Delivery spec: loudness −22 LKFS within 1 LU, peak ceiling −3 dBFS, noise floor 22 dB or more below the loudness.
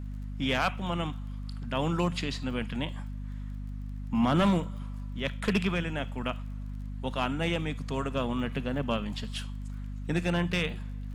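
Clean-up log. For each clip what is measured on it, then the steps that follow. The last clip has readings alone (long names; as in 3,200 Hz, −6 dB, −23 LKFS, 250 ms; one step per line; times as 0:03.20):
crackle rate 31 per second; mains hum 50 Hz; hum harmonics up to 250 Hz; level of the hum −35 dBFS; integrated loudness −31.5 LKFS; sample peak −16.0 dBFS; target loudness −22.0 LKFS
→ click removal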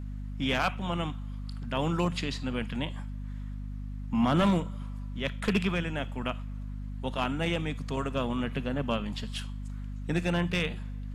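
crackle rate 0.090 per second; mains hum 50 Hz; hum harmonics up to 250 Hz; level of the hum −35 dBFS
→ mains-hum notches 50/100/150/200/250 Hz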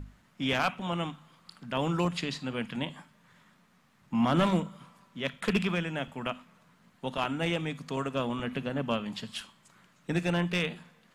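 mains hum none found; integrated loudness −31.5 LKFS; sample peak −14.0 dBFS; target loudness −22.0 LKFS
→ level +9.5 dB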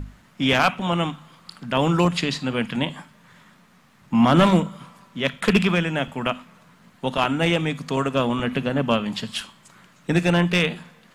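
integrated loudness −22.0 LKFS; sample peak −4.5 dBFS; background noise floor −55 dBFS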